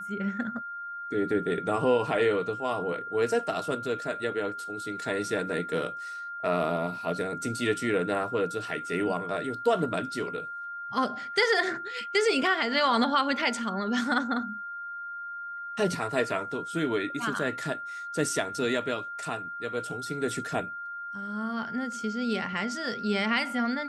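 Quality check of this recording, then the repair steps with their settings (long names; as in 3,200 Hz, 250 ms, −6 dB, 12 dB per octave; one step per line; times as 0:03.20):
whistle 1,400 Hz −35 dBFS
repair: notch filter 1,400 Hz, Q 30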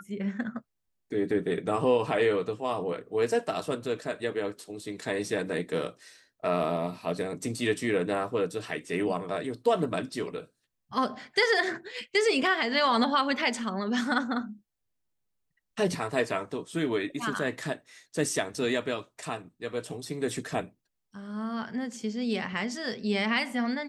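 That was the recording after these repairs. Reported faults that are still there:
none of them is left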